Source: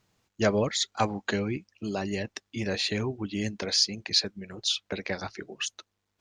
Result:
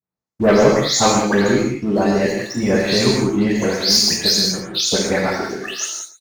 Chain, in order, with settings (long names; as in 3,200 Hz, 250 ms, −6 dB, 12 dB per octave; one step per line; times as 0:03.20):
every frequency bin delayed by itself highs late, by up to 209 ms
noise gate with hold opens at −48 dBFS
high-pass filter 47 Hz 24 dB per octave
parametric band 3,000 Hz −11.5 dB 0.77 octaves
leveller curve on the samples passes 2
single-tap delay 115 ms −14.5 dB
reverb whose tail is shaped and stops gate 220 ms flat, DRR −1 dB
level +5.5 dB